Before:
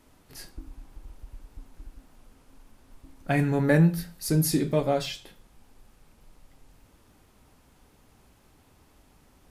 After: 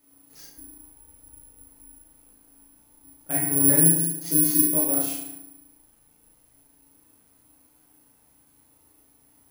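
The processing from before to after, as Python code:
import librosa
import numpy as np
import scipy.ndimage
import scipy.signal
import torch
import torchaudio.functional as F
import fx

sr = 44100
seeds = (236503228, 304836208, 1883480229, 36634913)

y = scipy.signal.sosfilt(scipy.signal.butter(4, 8300.0, 'lowpass', fs=sr, output='sos'), x)
y = fx.low_shelf(y, sr, hz=87.0, db=-11.5)
y = fx.doubler(y, sr, ms=36.0, db=-2.5)
y = fx.rev_fdn(y, sr, rt60_s=0.97, lf_ratio=1.3, hf_ratio=0.55, size_ms=20.0, drr_db=-2.5)
y = (np.kron(y[::4], np.eye(4)[0]) * 4)[:len(y)]
y = F.gain(torch.from_numpy(y), -12.0).numpy()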